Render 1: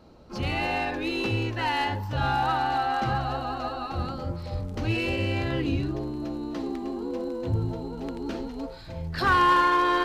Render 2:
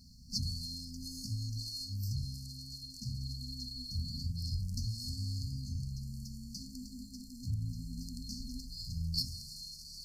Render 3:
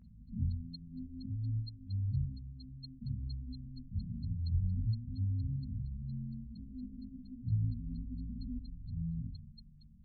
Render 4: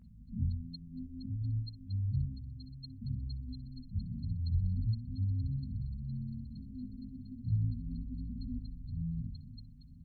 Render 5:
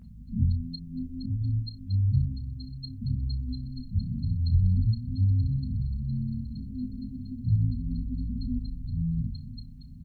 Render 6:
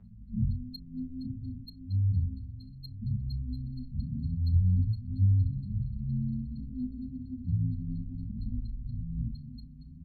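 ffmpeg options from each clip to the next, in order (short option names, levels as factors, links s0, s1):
-af "acompressor=threshold=0.0316:ratio=10,afftfilt=real='re*(1-between(b*sr/4096,260,4200))':imag='im*(1-between(b*sr/4096,260,4200))':win_size=4096:overlap=0.75,lowshelf=f=330:t=q:w=3:g=-10,volume=3.35"
-af "flanger=delay=17.5:depth=5.2:speed=1.2,afftfilt=real='re*lt(b*sr/1024,620*pow(4300/620,0.5+0.5*sin(2*PI*4.3*pts/sr)))':imag='im*lt(b*sr/1024,620*pow(4300/620,0.5+0.5*sin(2*PI*4.3*pts/sr)))':win_size=1024:overlap=0.75,volume=1.78"
-af "aecho=1:1:993|1986|2979|3972|4965:0.126|0.0755|0.0453|0.0272|0.0163,volume=1.12"
-filter_complex "[0:a]asplit=2[s0][s1];[s1]adelay=32,volume=0.224[s2];[s0][s2]amix=inputs=2:normalize=0,volume=2.66"
-filter_complex "[0:a]acrossover=split=200[s0][s1];[s1]adynamicsmooth=sensitivity=8:basefreq=2700[s2];[s0][s2]amix=inputs=2:normalize=0,asplit=2[s3][s4];[s4]adelay=7.1,afreqshift=0.36[s5];[s3][s5]amix=inputs=2:normalize=1"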